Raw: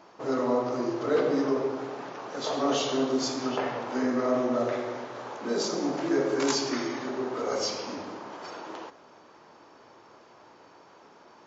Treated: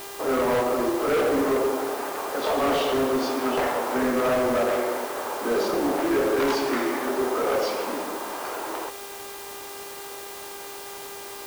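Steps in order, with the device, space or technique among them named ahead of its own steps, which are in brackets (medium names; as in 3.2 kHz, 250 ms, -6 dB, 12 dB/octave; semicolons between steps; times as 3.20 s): aircraft radio (band-pass 310–2500 Hz; hard clipper -28 dBFS, distortion -9 dB; mains buzz 400 Hz, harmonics 36, -50 dBFS -5 dB/octave; white noise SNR 16 dB); trim +8.5 dB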